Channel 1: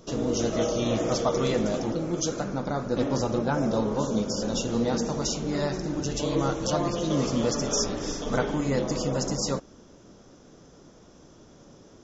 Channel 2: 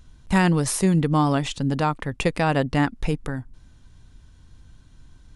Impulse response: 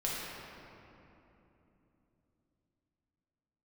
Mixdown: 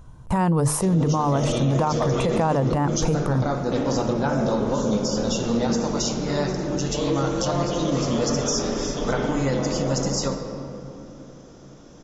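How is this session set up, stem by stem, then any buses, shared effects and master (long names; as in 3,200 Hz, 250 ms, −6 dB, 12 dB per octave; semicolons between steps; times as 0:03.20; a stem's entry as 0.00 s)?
+1.0 dB, 0.75 s, send −8.5 dB, no processing
+2.0 dB, 0.00 s, no send, octave-band graphic EQ 125/500/1,000/2,000/4,000 Hz +11/+7/+10/−5/−7 dB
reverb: on, RT60 3.2 s, pre-delay 6 ms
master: mains-hum notches 50/100/150/200/250/300/350/400/450 Hz; brickwall limiter −13 dBFS, peak gain reduction 14 dB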